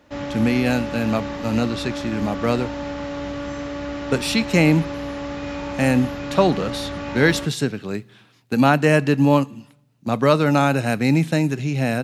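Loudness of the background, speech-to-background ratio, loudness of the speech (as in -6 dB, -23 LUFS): -29.5 LUFS, 9.0 dB, -20.5 LUFS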